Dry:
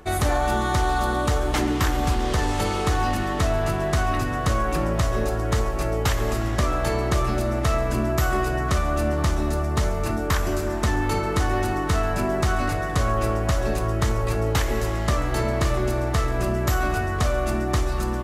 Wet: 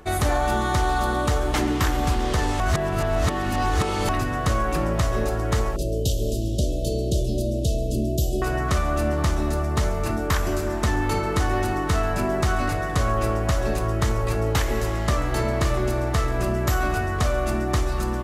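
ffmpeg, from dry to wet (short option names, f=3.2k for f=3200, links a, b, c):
-filter_complex "[0:a]asettb=1/sr,asplit=3[a][b][c];[a]atrim=end=5.764[d];[b]atrim=start=5.76:end=8.42,asetpts=PTS-STARTPTS,afade=t=in:d=0.004:c=qsin,afade=t=out:st=2.656:d=0.004:c=qsin,asuperstop=centerf=1400:order=12:qfactor=0.57[e];[c]atrim=start=8.416[f];[d][e]acrossfade=d=0.004:c1=hsin:c2=qsin[g];[g][f]acrossfade=d=0.004:c1=qsin:c2=hsin,asplit=3[h][i][j];[h]atrim=end=2.602[k];[i]atrim=start=2.598:end=4.092,asetpts=PTS-STARTPTS,areverse[l];[j]atrim=start=4.088[m];[k][l]acrossfade=d=0.004:c1=hsin:c2=hsin[n];[n][m]acrossfade=d=0.004:c1=hsin:c2=hsin"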